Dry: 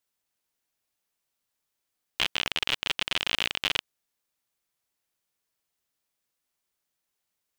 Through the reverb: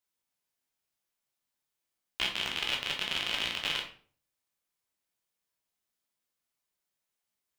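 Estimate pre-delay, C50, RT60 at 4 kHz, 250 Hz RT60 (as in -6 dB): 10 ms, 8.5 dB, 0.35 s, 0.50 s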